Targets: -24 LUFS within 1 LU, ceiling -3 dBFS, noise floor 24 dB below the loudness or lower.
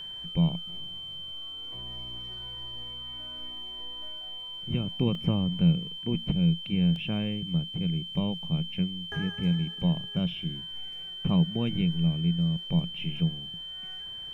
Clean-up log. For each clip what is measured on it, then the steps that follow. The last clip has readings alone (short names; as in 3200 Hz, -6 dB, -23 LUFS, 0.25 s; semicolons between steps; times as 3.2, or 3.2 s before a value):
dropouts 2; longest dropout 1.2 ms; steady tone 3100 Hz; tone level -37 dBFS; loudness -30.0 LUFS; peak -13.0 dBFS; loudness target -24.0 LUFS
-> interpolate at 5.15/6.96, 1.2 ms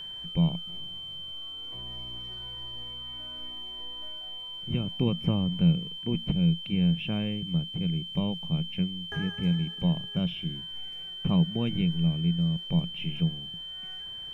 dropouts 0; steady tone 3100 Hz; tone level -37 dBFS
-> notch 3100 Hz, Q 30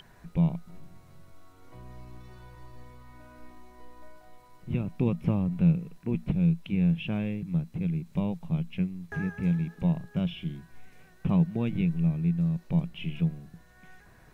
steady tone none; loudness -29.0 LUFS; peak -13.5 dBFS; loudness target -24.0 LUFS
-> gain +5 dB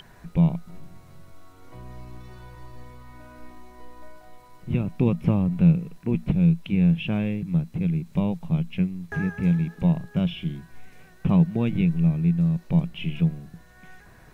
loudness -24.0 LUFS; peak -8.5 dBFS; noise floor -51 dBFS